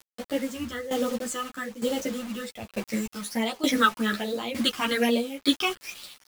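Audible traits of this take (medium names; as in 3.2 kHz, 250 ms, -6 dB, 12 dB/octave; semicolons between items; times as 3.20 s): phasing stages 8, 1.2 Hz, lowest notch 550–1900 Hz; a quantiser's noise floor 8-bit, dither none; tremolo saw down 1.1 Hz, depth 85%; a shimmering, thickened sound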